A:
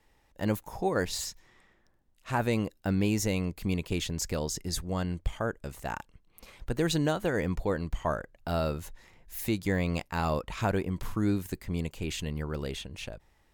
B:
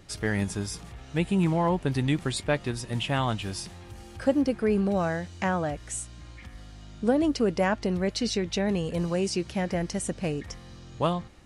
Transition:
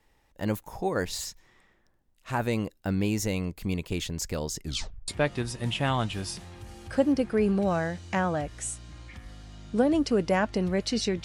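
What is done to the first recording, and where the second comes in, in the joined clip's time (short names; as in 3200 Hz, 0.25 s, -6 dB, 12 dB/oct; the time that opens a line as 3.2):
A
4.62 tape stop 0.46 s
5.08 switch to B from 2.37 s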